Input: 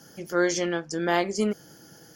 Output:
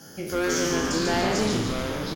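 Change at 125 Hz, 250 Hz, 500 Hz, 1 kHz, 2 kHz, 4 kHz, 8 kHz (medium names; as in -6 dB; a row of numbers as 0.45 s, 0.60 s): +7.0 dB, +2.5 dB, +0.5 dB, +1.5 dB, +1.5 dB, +6.5 dB, +5.0 dB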